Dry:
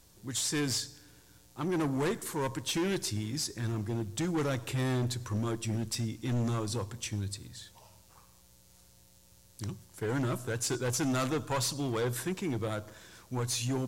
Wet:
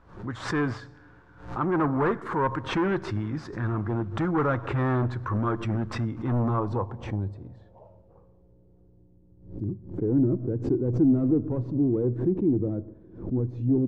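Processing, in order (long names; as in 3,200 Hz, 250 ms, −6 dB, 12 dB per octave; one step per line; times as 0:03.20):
low-pass filter sweep 1,300 Hz → 320 Hz, 0:05.98–0:09.19
background raised ahead of every attack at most 110 dB per second
level +5 dB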